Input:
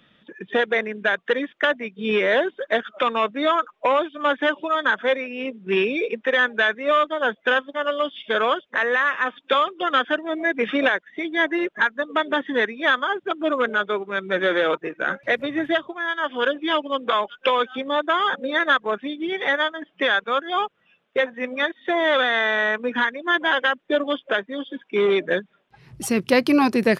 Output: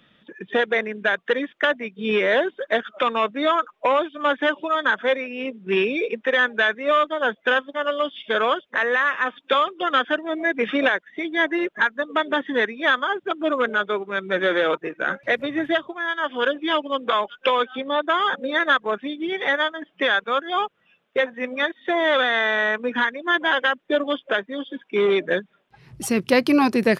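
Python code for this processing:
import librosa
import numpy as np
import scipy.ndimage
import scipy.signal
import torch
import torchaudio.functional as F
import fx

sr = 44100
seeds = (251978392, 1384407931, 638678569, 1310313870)

y = fx.cheby1_bandpass(x, sr, low_hz=120.0, high_hz=4300.0, order=3, at=(17.64, 18.05), fade=0.02)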